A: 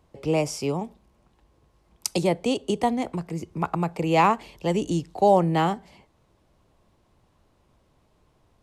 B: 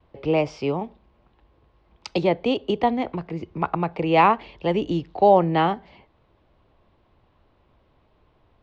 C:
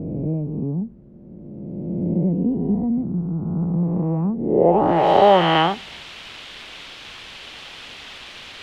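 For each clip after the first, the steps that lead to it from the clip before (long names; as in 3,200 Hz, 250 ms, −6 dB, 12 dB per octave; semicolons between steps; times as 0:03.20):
noise gate with hold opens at −57 dBFS; low-pass filter 3,800 Hz 24 dB per octave; parametric band 170 Hz −4 dB 1 octave; level +3 dB
peak hold with a rise ahead of every peak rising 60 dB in 2.39 s; bit-depth reduction 6 bits, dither triangular; low-pass filter sweep 200 Hz → 3,200 Hz, 0:04.37–0:05.08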